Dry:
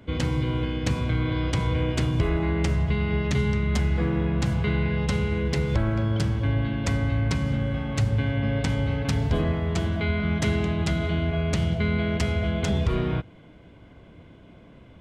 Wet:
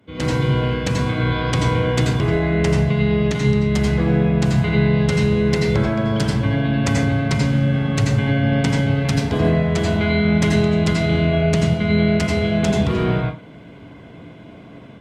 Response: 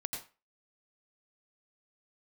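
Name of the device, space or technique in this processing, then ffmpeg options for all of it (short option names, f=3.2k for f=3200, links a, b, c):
far-field microphone of a smart speaker: -filter_complex "[1:a]atrim=start_sample=2205[a];[0:a][a]afir=irnorm=-1:irlink=0,highpass=110,dynaudnorm=f=140:g=3:m=13.5dB,volume=-4.5dB" -ar 48000 -c:a libopus -b:a 48k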